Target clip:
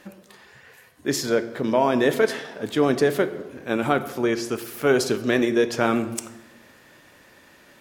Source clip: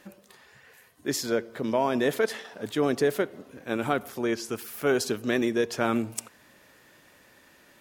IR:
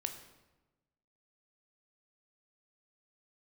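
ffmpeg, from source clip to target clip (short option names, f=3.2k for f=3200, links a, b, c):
-filter_complex "[0:a]asplit=2[a][b];[1:a]atrim=start_sample=2205,highshelf=f=9.6k:g=-11[c];[b][c]afir=irnorm=-1:irlink=0,volume=3dB[d];[a][d]amix=inputs=2:normalize=0,volume=-2dB"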